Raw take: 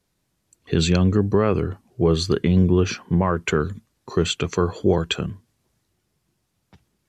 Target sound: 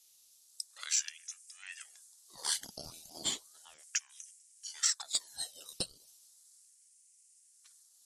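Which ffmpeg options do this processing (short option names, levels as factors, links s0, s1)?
-af "asuperpass=centerf=5600:order=12:qfactor=0.63,acompressor=threshold=0.0224:ratio=12,asetrate=38808,aresample=44100,aexciter=amount=7.5:drive=9.4:freq=5900,aeval=exprs='val(0)*sin(2*PI*1300*n/s+1300*0.85/0.35*sin(2*PI*0.35*n/s))':c=same,volume=0.841"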